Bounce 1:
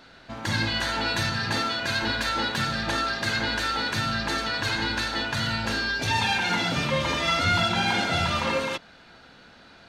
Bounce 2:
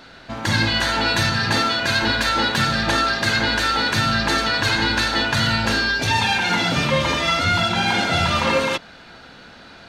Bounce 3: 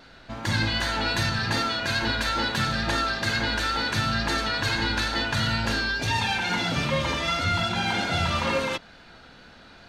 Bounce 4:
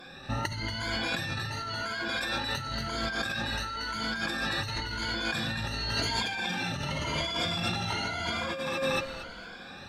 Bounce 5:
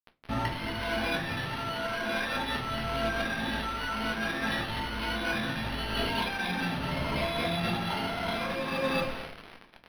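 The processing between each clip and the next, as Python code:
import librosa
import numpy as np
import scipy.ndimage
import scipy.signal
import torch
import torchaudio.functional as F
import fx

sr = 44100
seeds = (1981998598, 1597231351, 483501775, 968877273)

y1 = fx.rider(x, sr, range_db=10, speed_s=0.5)
y1 = y1 * 10.0 ** (6.5 / 20.0)
y2 = fx.wow_flutter(y1, sr, seeds[0], rate_hz=2.1, depth_cents=24.0)
y2 = fx.low_shelf(y2, sr, hz=65.0, db=9.0)
y2 = y2 * 10.0 ** (-6.5 / 20.0)
y3 = fx.spec_ripple(y2, sr, per_octave=1.8, drift_hz=0.94, depth_db=22)
y3 = fx.echo_feedback(y3, sr, ms=231, feedback_pct=20, wet_db=-5.0)
y3 = fx.over_compress(y3, sr, threshold_db=-26.0, ratio=-1.0)
y3 = y3 * 10.0 ** (-6.5 / 20.0)
y4 = fx.quant_dither(y3, sr, seeds[1], bits=6, dither='none')
y4 = fx.room_shoebox(y4, sr, seeds[2], volume_m3=190.0, walls='furnished', distance_m=1.5)
y4 = np.interp(np.arange(len(y4)), np.arange(len(y4))[::6], y4[::6])
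y4 = y4 * 10.0 ** (-1.5 / 20.0)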